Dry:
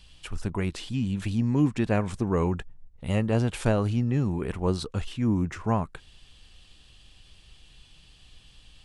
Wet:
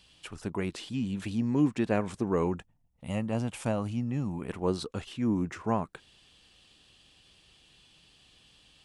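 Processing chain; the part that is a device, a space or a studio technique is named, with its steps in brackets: filter by subtraction (in parallel: LPF 300 Hz 12 dB/oct + phase invert); 2.59–4.49 on the sum: fifteen-band EQ 400 Hz -11 dB, 1600 Hz -6 dB, 4000 Hz -6 dB; gain -3 dB

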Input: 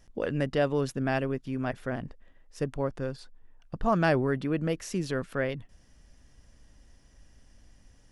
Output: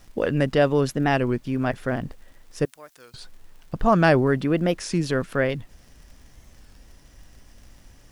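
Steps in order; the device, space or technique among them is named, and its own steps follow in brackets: warped LP (record warp 33 1/3 rpm, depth 160 cents; crackle; pink noise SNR 37 dB); 2.65–3.14 differentiator; gain +7 dB

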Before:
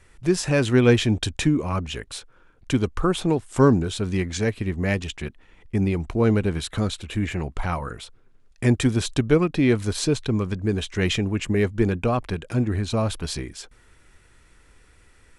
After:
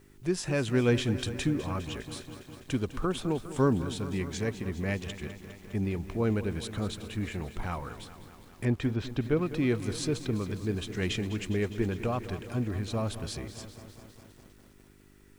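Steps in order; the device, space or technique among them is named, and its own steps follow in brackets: video cassette with head-switching buzz (buzz 50 Hz, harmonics 8, -51 dBFS -1 dB/oct; white noise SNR 39 dB); 8.65–9.46 air absorption 190 m; lo-fi delay 0.204 s, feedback 80%, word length 7-bit, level -13.5 dB; gain -8.5 dB

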